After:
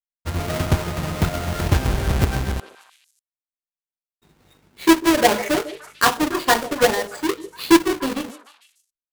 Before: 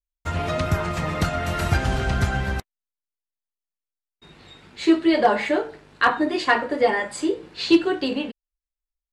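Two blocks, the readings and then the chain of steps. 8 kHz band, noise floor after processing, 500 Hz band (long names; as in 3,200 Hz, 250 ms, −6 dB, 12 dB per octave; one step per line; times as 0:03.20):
+11.0 dB, below −85 dBFS, +1.0 dB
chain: each half-wave held at its own peak
power curve on the samples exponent 1.4
echo through a band-pass that steps 148 ms, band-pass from 470 Hz, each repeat 1.4 octaves, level −10.5 dB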